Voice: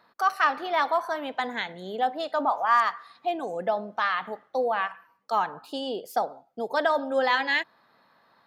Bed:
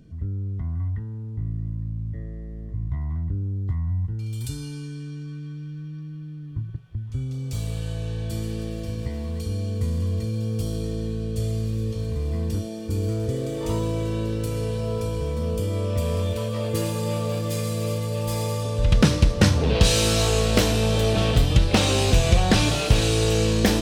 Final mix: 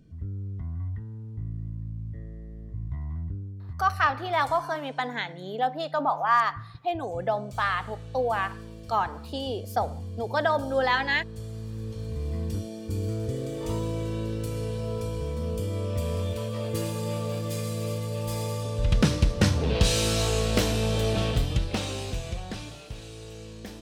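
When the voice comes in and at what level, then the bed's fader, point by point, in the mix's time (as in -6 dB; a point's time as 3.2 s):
3.60 s, -0.5 dB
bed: 3.26 s -5.5 dB
3.56 s -12 dB
11.47 s -12 dB
12.25 s -4.5 dB
21.18 s -4.5 dB
22.9 s -21.5 dB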